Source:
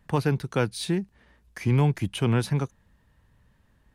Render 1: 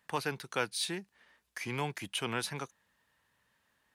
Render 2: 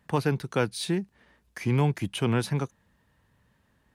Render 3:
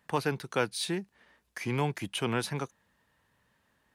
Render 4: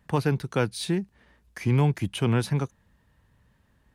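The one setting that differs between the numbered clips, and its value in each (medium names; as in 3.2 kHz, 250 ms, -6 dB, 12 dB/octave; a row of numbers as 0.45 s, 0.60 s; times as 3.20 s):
high-pass, cutoff frequency: 1.3 kHz, 140 Hz, 520 Hz, 42 Hz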